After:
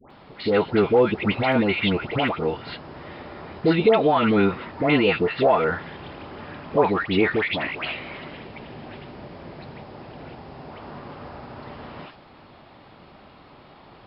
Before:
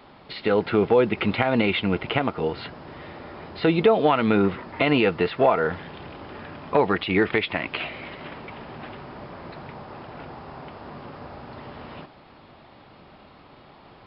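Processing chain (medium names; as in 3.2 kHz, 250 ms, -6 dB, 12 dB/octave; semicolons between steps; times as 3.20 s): 8.23–10.66 s: peaking EQ 1.2 kHz -6.5 dB 1.2 oct; phase dispersion highs, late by 107 ms, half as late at 1.2 kHz; trim +1 dB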